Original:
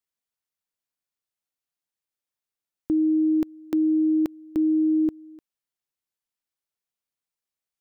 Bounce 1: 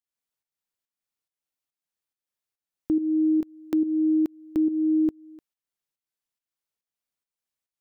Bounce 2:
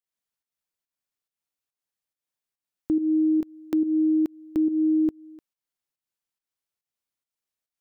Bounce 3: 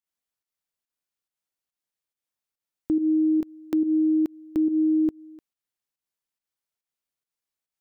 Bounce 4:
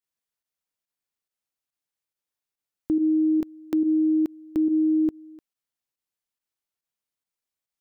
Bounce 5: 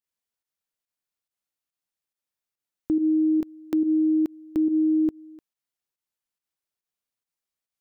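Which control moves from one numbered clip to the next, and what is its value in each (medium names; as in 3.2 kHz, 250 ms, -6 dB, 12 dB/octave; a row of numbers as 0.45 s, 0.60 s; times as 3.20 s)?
volume shaper, release: 368 ms, 226 ms, 147 ms, 64 ms, 97 ms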